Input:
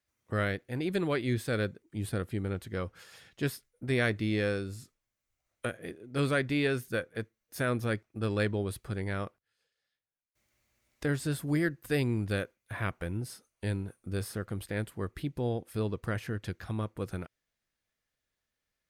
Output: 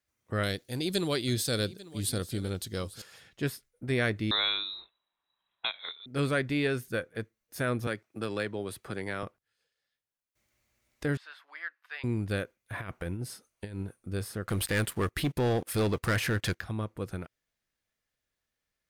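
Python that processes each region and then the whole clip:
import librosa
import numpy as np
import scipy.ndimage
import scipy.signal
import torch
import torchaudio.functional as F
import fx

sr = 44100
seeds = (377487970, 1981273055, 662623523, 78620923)

y = fx.chain(x, sr, fx.high_shelf_res(hz=3000.0, db=12.0, q=1.5),
    fx.echo_single(ms=844, db=-18.5), at=(0.43, 3.02))
y = fx.chain(y, sr, fx.peak_eq(hz=2900.0, db=14.5, octaves=0.36),
    fx.freq_invert(carrier_hz=3900), at=(4.31, 6.06))
y = fx.chain(y, sr, fx.highpass(hz=320.0, slope=6),
    fx.band_squash(depth_pct=70), at=(7.87, 9.23))
y = fx.chain(y, sr, fx.highpass(hz=1000.0, slope=24),
    fx.air_absorb(metres=300.0), at=(11.17, 12.04))
y = fx.chain(y, sr, fx.low_shelf(hz=69.0, db=-3.0),
    fx.over_compress(threshold_db=-35.0, ratio=-0.5), at=(12.73, 13.87))
y = fx.chain(y, sr, fx.tilt_shelf(db=-4.0, hz=770.0),
    fx.leveller(passes=3), at=(14.47, 16.61))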